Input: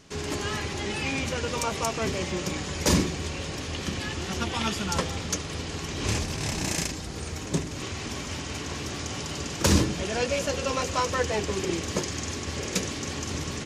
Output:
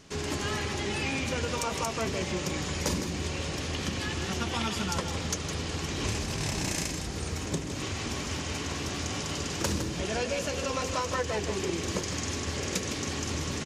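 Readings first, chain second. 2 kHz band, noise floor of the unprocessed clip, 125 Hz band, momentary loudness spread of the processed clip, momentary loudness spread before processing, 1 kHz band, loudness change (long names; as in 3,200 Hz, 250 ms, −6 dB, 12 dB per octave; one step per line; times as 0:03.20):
−2.0 dB, −36 dBFS, −2.5 dB, 3 LU, 9 LU, −2.5 dB, −2.5 dB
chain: downward compressor 6 to 1, threshold −27 dBFS, peak gain reduction 11.5 dB
single-tap delay 160 ms −9 dB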